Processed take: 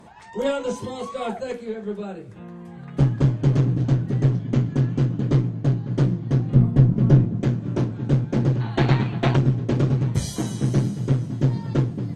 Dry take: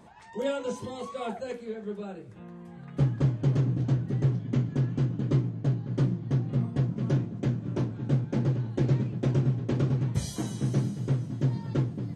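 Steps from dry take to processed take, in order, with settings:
harmonic generator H 2 −11 dB, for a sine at −13 dBFS
0:06.54–0:07.41: spectral tilt −2 dB per octave
0:08.61–0:09.36: gain on a spectral selection 660–4,600 Hz +11 dB
level +6 dB

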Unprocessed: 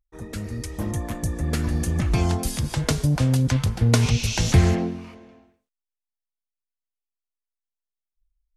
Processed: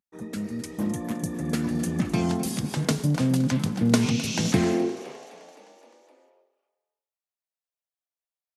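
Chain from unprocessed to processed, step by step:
echo with shifted repeats 258 ms, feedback 61%, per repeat +30 Hz, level −16 dB
high-pass filter sweep 200 Hz → 620 Hz, 0:04.51–0:05.25
level −3 dB

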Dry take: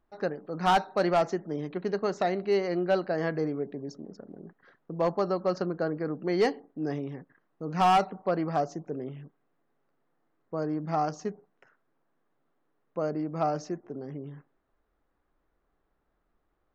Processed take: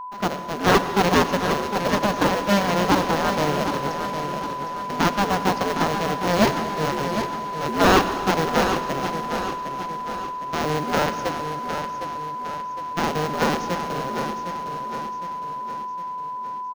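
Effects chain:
sub-harmonics by changed cycles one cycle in 2, inverted
brick-wall band-pass 120–6,900 Hz
in parallel at −5.5 dB: sample-rate reduction 1,200 Hz, jitter 0%
on the sum: steady tone 1,000 Hz −36 dBFS
repeating echo 759 ms, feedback 49%, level −8 dB
on a send at −10 dB: convolution reverb RT60 2.7 s, pre-delay 73 ms
on the sum: level +4.5 dB

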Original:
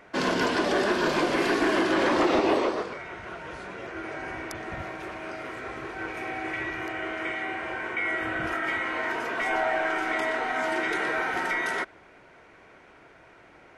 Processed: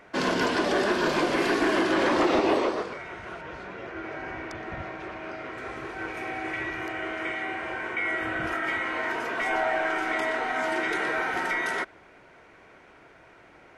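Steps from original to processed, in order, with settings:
0:03.41–0:05.58: high-frequency loss of the air 98 metres

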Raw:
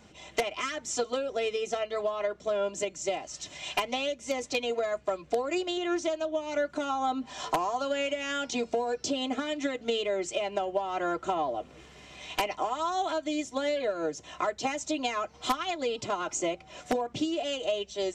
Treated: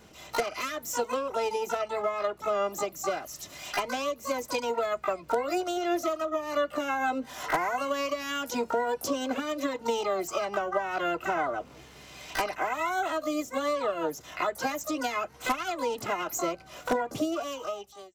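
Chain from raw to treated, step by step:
fade-out on the ending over 0.88 s
dynamic equaliser 3,400 Hz, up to −6 dB, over −49 dBFS, Q 1.2
pitch-shifted copies added +12 semitones −5 dB

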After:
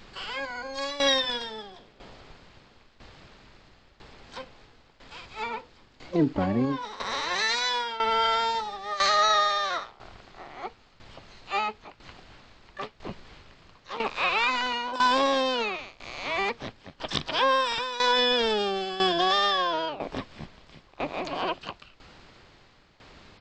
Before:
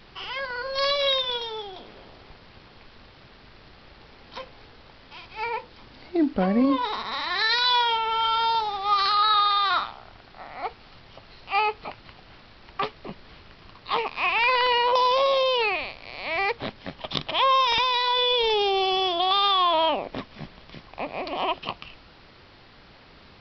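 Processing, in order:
pitch-shifted copies added −12 semitones −8 dB, +7 semitones −10 dB
shaped tremolo saw down 1 Hz, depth 80%

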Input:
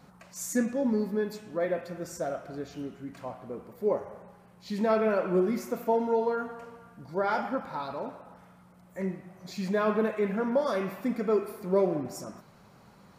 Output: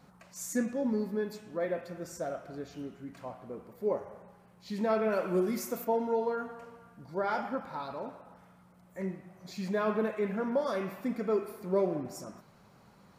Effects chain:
0:05.12–0:05.85: high-shelf EQ 4,500 Hz +12 dB
level −3.5 dB

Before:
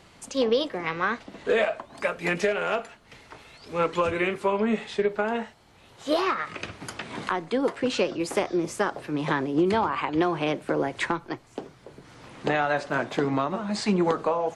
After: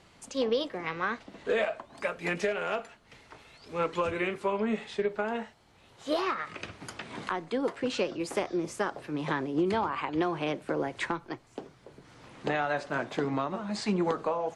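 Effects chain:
low-pass filter 12,000 Hz
level −5 dB

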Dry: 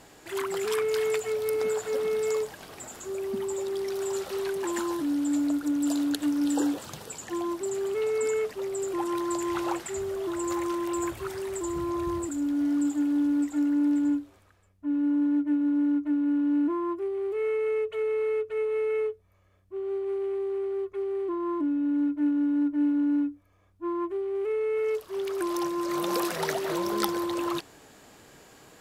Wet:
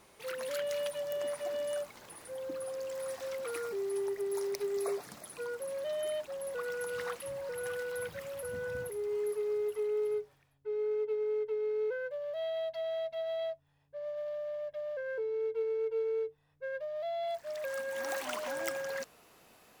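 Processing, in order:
gliding playback speed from 132% → 159%
level −8 dB

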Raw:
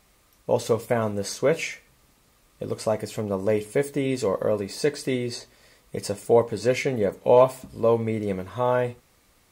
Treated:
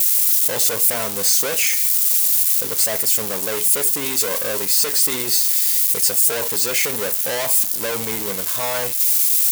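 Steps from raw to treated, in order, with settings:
spike at every zero crossing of −23.5 dBFS
leveller curve on the samples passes 5
spectral tilt +3.5 dB per octave
brickwall limiter −0.5 dBFS, peak gain reduction 8 dB
level −7 dB

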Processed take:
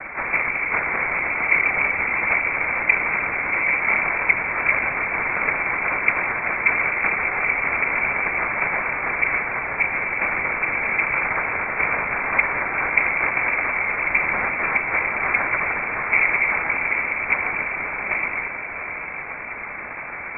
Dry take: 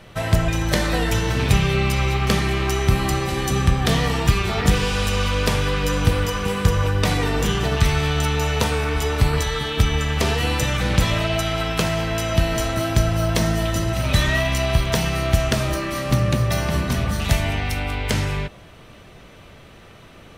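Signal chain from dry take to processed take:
linear delta modulator 16 kbit/s, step −25 dBFS
cochlear-implant simulation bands 3
voice inversion scrambler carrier 2,500 Hz
feedback delay with all-pass diffusion 751 ms, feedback 69%, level −11.5 dB

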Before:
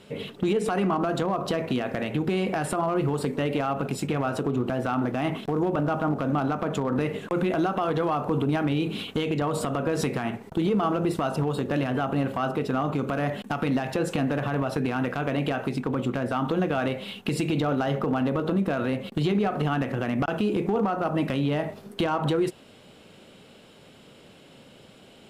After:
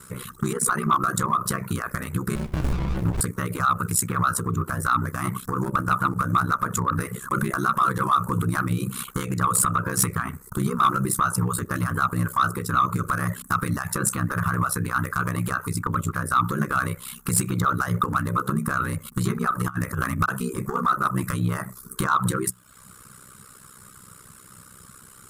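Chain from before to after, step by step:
mains-hum notches 50/100/150/200 Hz
reverb reduction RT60 0.64 s
drawn EQ curve 160 Hz 0 dB, 250 Hz −15 dB, 390 Hz −12 dB, 740 Hz −21 dB, 1,200 Hz +8 dB, 2,900 Hz −17 dB, 9,300 Hz +15 dB
0:19.64–0:20.14: compressor whose output falls as the input rises −33 dBFS, ratio −0.5
ring modulation 32 Hz
sine wavefolder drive 10 dB, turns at −9 dBFS
floating-point word with a short mantissa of 8 bits
0:02.35–0:03.21: windowed peak hold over 65 samples
level −3 dB

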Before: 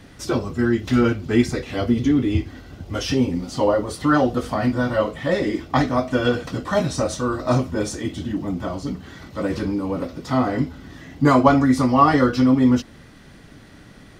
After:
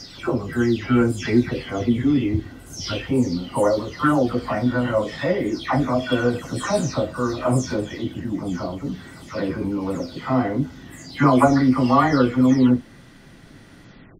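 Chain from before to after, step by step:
every frequency bin delayed by itself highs early, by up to 348 ms

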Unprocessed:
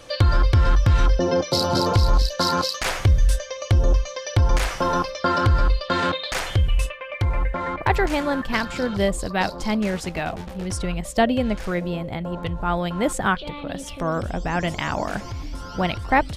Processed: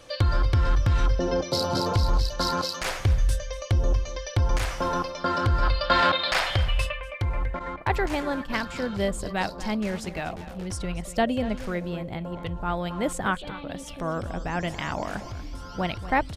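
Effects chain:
slap from a distant wall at 41 metres, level −14 dB
0:05.63–0:07.01: gain on a spectral selection 520–5,500 Hz +8 dB
0:07.59–0:08.50: downward expander −23 dBFS
level −5 dB

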